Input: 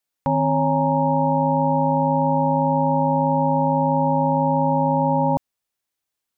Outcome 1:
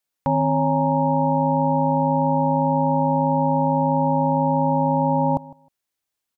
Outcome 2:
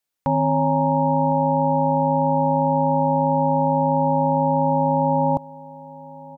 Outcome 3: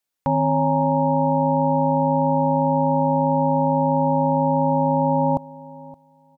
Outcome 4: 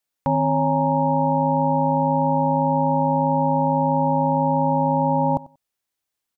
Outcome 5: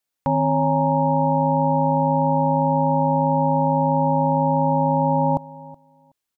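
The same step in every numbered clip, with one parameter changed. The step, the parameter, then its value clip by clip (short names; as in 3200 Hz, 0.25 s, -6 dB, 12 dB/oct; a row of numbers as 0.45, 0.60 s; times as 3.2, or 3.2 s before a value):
feedback echo, time: 156, 1057, 570, 93, 373 ms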